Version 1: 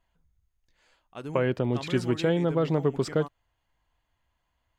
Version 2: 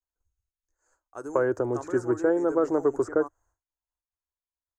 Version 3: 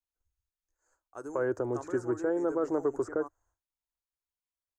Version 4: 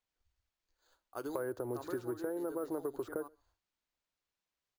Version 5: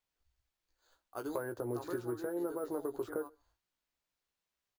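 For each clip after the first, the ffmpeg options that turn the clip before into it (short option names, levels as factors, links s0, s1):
-filter_complex "[0:a]agate=range=0.0224:threshold=0.00126:ratio=3:detection=peak,firequalizer=gain_entry='entry(100,0);entry(160,-22);entry(310,4);entry(650,1);entry(1500,4);entry(2200,-17);entry(3400,-24);entry(6500,13);entry(11000,0)':delay=0.05:min_phase=1,acrossover=split=100|2400[s0][s1][s2];[s2]acompressor=threshold=0.00282:ratio=6[s3];[s0][s1][s3]amix=inputs=3:normalize=0"
-af "alimiter=limit=0.158:level=0:latency=1:release=90,volume=0.631"
-filter_complex "[0:a]acrusher=samples=4:mix=1:aa=0.000001,acompressor=threshold=0.0141:ratio=6,asplit=2[s0][s1];[s1]adelay=128.3,volume=0.0398,highshelf=f=4000:g=-2.89[s2];[s0][s2]amix=inputs=2:normalize=0,volume=1.26"
-filter_complex "[0:a]asplit=2[s0][s1];[s1]adelay=17,volume=0.447[s2];[s0][s2]amix=inputs=2:normalize=0"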